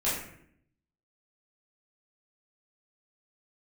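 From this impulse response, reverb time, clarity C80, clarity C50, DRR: 0.65 s, 6.0 dB, 2.5 dB, -10.0 dB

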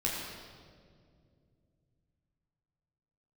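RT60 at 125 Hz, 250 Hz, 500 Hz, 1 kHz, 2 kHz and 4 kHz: 4.2 s, 3.4 s, 2.7 s, 1.8 s, 1.5 s, 1.4 s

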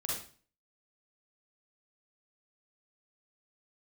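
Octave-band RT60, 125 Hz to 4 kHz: 0.50 s, 0.50 s, 0.40 s, 0.40 s, 0.40 s, 0.40 s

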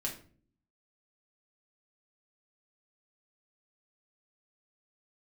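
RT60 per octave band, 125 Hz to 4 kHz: 0.85 s, 0.80 s, 0.55 s, 0.40 s, 0.35 s, 0.30 s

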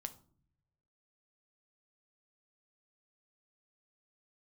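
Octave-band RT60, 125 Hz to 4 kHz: 1.4 s, 0.95 s, 0.80 s, 0.45 s, 0.30 s, 0.30 s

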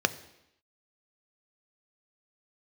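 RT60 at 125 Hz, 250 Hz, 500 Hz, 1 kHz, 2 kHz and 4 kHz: 0.75 s, 0.85 s, 0.80 s, 0.85 s, 0.85 s, 0.85 s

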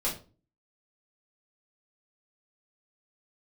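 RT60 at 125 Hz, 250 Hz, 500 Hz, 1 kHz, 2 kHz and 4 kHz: 0.55 s, 0.50 s, 0.40 s, 0.30 s, 0.25 s, 0.25 s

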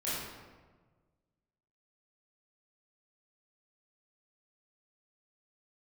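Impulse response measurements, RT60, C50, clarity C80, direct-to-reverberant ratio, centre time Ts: 1.4 s, -2.5 dB, 1.0 dB, -11.0 dB, 98 ms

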